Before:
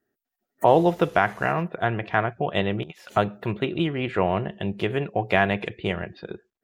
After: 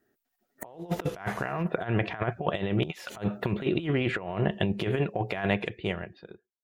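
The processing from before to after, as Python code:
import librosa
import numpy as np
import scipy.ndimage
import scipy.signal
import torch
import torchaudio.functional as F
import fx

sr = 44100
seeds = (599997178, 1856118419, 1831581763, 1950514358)

y = fx.fade_out_tail(x, sr, length_s=2.16)
y = fx.over_compress(y, sr, threshold_db=-28.0, ratio=-0.5)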